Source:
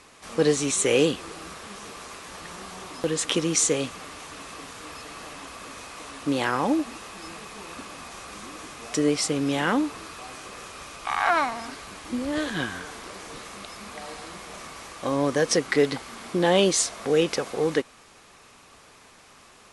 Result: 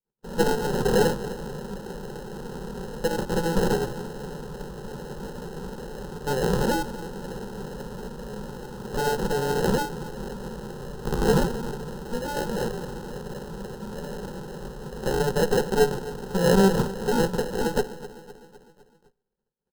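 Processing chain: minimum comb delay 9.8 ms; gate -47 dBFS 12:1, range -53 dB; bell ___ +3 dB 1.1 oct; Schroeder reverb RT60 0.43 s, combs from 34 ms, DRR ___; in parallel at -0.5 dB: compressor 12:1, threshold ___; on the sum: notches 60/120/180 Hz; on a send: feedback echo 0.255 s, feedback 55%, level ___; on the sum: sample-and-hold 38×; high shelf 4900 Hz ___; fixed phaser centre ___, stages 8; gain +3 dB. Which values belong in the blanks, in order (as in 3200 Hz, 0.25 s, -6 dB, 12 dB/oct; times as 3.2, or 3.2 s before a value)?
2700 Hz, 19.5 dB, -32 dBFS, -15.5 dB, -7.5 dB, 440 Hz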